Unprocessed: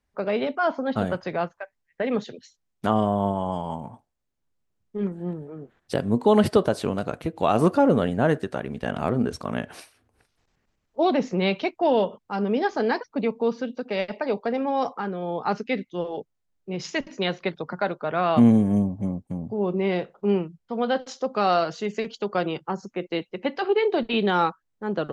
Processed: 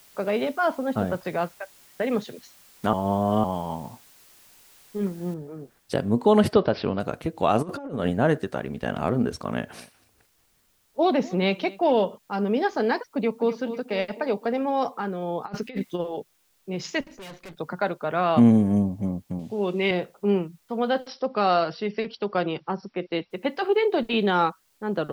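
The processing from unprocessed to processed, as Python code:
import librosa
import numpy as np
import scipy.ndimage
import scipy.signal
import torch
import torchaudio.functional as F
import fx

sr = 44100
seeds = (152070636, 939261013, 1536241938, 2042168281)

y = fx.high_shelf(x, sr, hz=2500.0, db=-9.5, at=(0.75, 1.25))
y = fx.noise_floor_step(y, sr, seeds[0], at_s=5.34, before_db=-54, after_db=-67, tilt_db=0.0)
y = fx.resample_bad(y, sr, factor=4, down='none', up='filtered', at=(6.53, 7.0))
y = fx.over_compress(y, sr, threshold_db=-24.0, ratio=-0.5, at=(7.61, 8.11), fade=0.02)
y = fx.echo_single(y, sr, ms=240, db=-22.0, at=(9.71, 11.92), fade=0.02)
y = fx.echo_throw(y, sr, start_s=13.12, length_s=0.41, ms=250, feedback_pct=55, wet_db=-11.0)
y = fx.over_compress(y, sr, threshold_db=-31.0, ratio=-0.5, at=(15.44, 15.98), fade=0.02)
y = fx.tube_stage(y, sr, drive_db=39.0, bias=0.75, at=(17.03, 17.56), fade=0.02)
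y = fx.weighting(y, sr, curve='D', at=(19.39, 19.91))
y = fx.brickwall_lowpass(y, sr, high_hz=5800.0, at=(21.06, 23.3), fade=0.02)
y = fx.edit(y, sr, fx.reverse_span(start_s=2.93, length_s=0.51), tone=tone)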